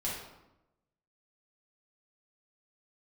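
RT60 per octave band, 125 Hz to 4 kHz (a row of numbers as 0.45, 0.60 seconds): 1.1, 1.1, 0.95, 0.90, 0.75, 0.60 seconds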